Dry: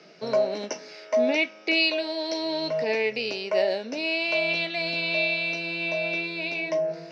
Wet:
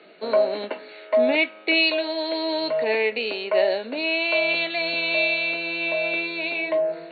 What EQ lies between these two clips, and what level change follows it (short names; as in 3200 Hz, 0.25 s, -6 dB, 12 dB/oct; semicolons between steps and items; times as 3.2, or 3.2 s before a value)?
HPF 220 Hz 24 dB/oct; dynamic EQ 1200 Hz, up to +3 dB, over -41 dBFS, Q 1.1; brick-wall FIR low-pass 4500 Hz; +2.5 dB